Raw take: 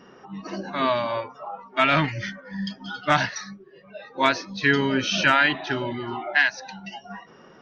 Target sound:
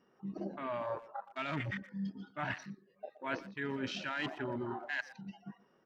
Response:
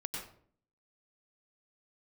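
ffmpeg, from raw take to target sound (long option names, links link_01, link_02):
-filter_complex "[0:a]afwtdn=0.0316,equalizer=frequency=410:width_type=o:width=2.3:gain=2,areverse,acompressor=threshold=-29dB:ratio=16,areverse,atempo=1.3,asplit=2[link_01][link_02];[link_02]adelay=120,highpass=300,lowpass=3400,asoftclip=type=hard:threshold=-30dB,volume=-15dB[link_03];[link_01][link_03]amix=inputs=2:normalize=0,volume=-5dB"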